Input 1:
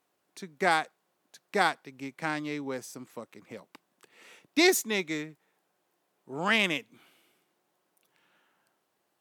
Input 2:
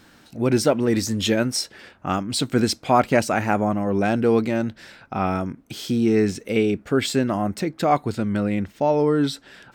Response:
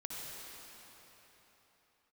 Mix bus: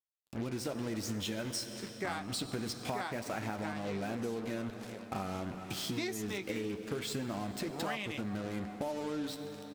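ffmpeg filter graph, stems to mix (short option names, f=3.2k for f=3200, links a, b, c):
-filter_complex "[0:a]adelay=1400,volume=-1.5dB[a];[1:a]acompressor=threshold=-31dB:ratio=2.5,acrusher=bits=5:mix=0:aa=0.5,volume=-1dB,asplit=2[b][c];[c]volume=-7dB[d];[2:a]atrim=start_sample=2205[e];[d][e]afir=irnorm=-1:irlink=0[f];[a][b][f]amix=inputs=3:normalize=0,flanger=delay=8.3:depth=2.6:regen=-49:speed=0.26:shape=triangular,acompressor=threshold=-33dB:ratio=10"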